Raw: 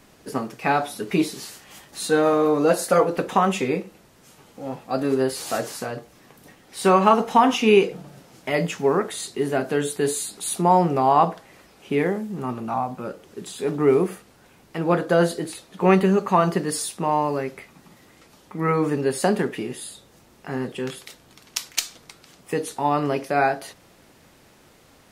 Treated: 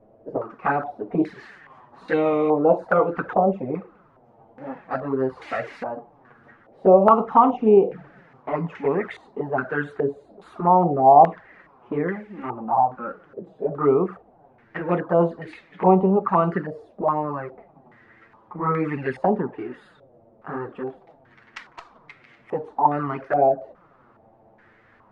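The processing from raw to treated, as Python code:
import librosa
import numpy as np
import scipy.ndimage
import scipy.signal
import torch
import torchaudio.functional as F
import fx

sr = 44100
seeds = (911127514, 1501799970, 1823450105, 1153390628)

y = fx.wow_flutter(x, sr, seeds[0], rate_hz=2.1, depth_cents=19.0)
y = fx.env_flanger(y, sr, rest_ms=9.6, full_db=-15.0)
y = fx.filter_held_lowpass(y, sr, hz=2.4, low_hz=620.0, high_hz=2100.0)
y = y * 10.0 ** (-1.0 / 20.0)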